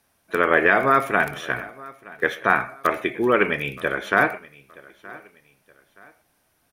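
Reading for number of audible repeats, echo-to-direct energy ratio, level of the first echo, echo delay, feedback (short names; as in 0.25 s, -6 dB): 2, -21.0 dB, -21.5 dB, 0.922 s, 34%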